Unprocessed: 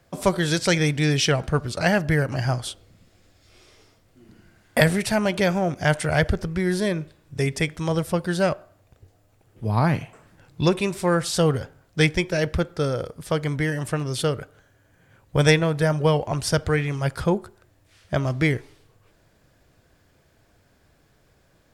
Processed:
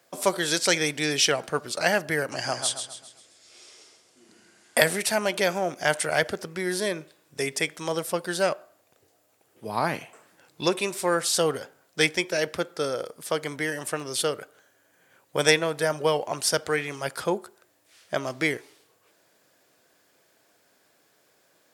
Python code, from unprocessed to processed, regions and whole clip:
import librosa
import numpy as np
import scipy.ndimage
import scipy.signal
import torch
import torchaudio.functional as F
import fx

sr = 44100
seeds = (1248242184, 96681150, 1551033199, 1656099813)

y = fx.chain(x, sr, fx.lowpass(hz=9100.0, slope=24),
    fx.high_shelf(hz=5300.0, db=9.5),
    fx.echo_feedback(ms=133, feedback_pct=44, wet_db=-8), at=(2.31, 4.78))
y = scipy.signal.sosfilt(scipy.signal.butter(2, 330.0, 'highpass', fs=sr, output='sos'), y)
y = fx.high_shelf(y, sr, hz=5300.0, db=8.0)
y = y * 10.0 ** (-1.5 / 20.0)